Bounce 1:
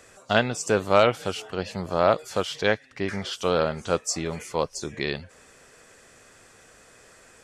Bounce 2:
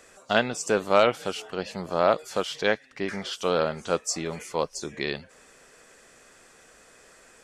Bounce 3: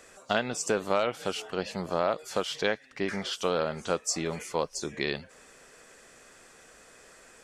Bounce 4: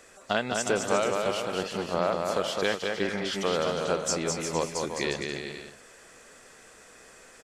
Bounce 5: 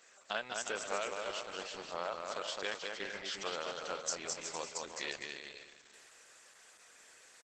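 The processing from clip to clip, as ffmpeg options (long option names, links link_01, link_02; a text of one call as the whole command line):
ffmpeg -i in.wav -af "equalizer=frequency=96:width_type=o:width=0.81:gain=-11,volume=-1dB" out.wav
ffmpeg -i in.wav -af "acompressor=threshold=-23dB:ratio=4" out.wav
ffmpeg -i in.wav -af "aecho=1:1:210|357|459.9|531.9|582.4:0.631|0.398|0.251|0.158|0.1" out.wav
ffmpeg -i in.wav -af "highpass=frequency=1300:poles=1,aecho=1:1:458:0.15,volume=-4.5dB" -ar 48000 -c:a libopus -b:a 12k out.opus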